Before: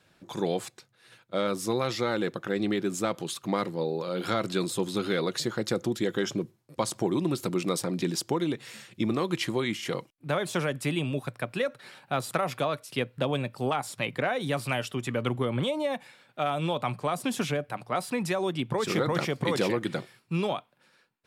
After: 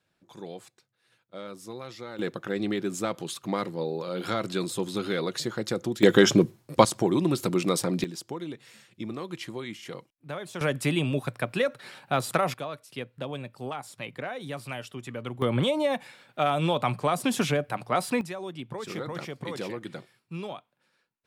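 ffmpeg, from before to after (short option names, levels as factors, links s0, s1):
-af "asetnsamples=n=441:p=0,asendcmd='2.19 volume volume -1dB;6.03 volume volume 11dB;6.85 volume volume 3dB;8.04 volume volume -8dB;10.61 volume volume 3dB;12.54 volume volume -7dB;15.42 volume volume 3.5dB;18.21 volume volume -8dB',volume=0.251"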